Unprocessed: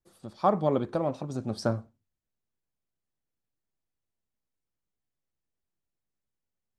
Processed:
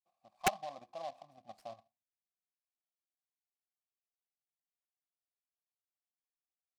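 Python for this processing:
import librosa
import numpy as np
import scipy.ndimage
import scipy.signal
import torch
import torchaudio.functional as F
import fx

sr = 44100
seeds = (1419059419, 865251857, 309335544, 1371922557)

y = fx.level_steps(x, sr, step_db=10)
y = fx.vowel_filter(y, sr, vowel='a')
y = fx.fixed_phaser(y, sr, hz=2100.0, stages=8)
y = (np.mod(10.0 ** (21.0 / 20.0) * y + 1.0, 2.0) - 1.0) / 10.0 ** (21.0 / 20.0)
y = fx.noise_mod_delay(y, sr, seeds[0], noise_hz=3100.0, depth_ms=0.034)
y = y * librosa.db_to_amplitude(1.0)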